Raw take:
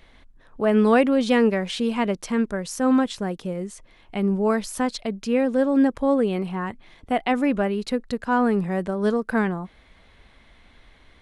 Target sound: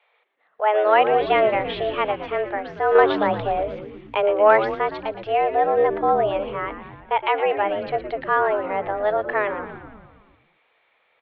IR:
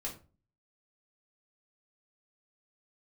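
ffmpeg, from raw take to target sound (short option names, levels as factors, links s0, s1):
-filter_complex "[0:a]highpass=f=270:t=q:w=0.5412,highpass=f=270:t=q:w=1.307,lowpass=f=3100:t=q:w=0.5176,lowpass=f=3100:t=q:w=0.7071,lowpass=f=3100:t=q:w=1.932,afreqshift=210,agate=range=0.355:threshold=0.00282:ratio=16:detection=peak,asplit=2[s0][s1];[s1]asplit=8[s2][s3][s4][s5][s6][s7][s8][s9];[s2]adelay=115,afreqshift=-89,volume=0.282[s10];[s3]adelay=230,afreqshift=-178,volume=0.184[s11];[s4]adelay=345,afreqshift=-267,volume=0.119[s12];[s5]adelay=460,afreqshift=-356,volume=0.0776[s13];[s6]adelay=575,afreqshift=-445,volume=0.0501[s14];[s7]adelay=690,afreqshift=-534,volume=0.0327[s15];[s8]adelay=805,afreqshift=-623,volume=0.0211[s16];[s9]adelay=920,afreqshift=-712,volume=0.0138[s17];[s10][s11][s12][s13][s14][s15][s16][s17]amix=inputs=8:normalize=0[s18];[s0][s18]amix=inputs=2:normalize=0,asettb=1/sr,asplit=3[s19][s20][s21];[s19]atrim=end=2.954[s22];[s20]atrim=start=2.95:end=4.75,asetpts=PTS-STARTPTS,afade=t=in:d=0.004:c=qsin,afade=t=out:st=1.796:d=0.004:c=qsin,acontrast=65[s23];[s21]atrim=start=4.746[s24];[s22][s23]acrossfade=d=0.004:c1=hsin:c2=qsin[s25];[s25][s24]acrossfade=d=0.004:c1=qsin:c2=hsin,volume=1.26"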